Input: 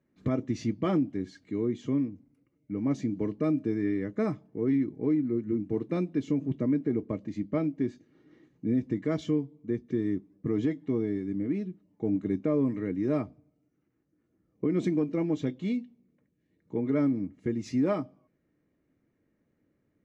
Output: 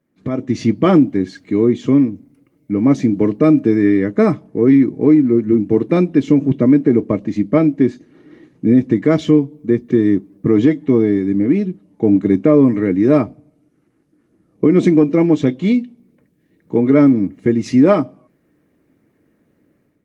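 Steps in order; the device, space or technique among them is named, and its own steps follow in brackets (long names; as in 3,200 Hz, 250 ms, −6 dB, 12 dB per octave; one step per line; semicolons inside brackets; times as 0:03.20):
video call (high-pass filter 120 Hz 6 dB per octave; automatic gain control gain up to 10.5 dB; level +6 dB; Opus 32 kbit/s 48,000 Hz)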